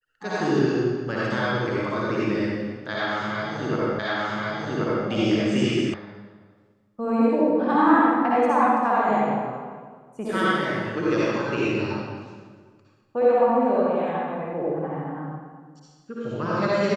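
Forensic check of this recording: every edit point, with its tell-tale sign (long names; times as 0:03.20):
0:03.99: the same again, the last 1.08 s
0:05.94: cut off before it has died away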